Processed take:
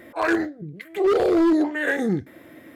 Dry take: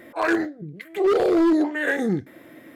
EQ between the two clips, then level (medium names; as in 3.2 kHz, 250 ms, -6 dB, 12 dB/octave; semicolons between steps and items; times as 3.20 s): peaking EQ 76 Hz +8.5 dB 0.58 oct; 0.0 dB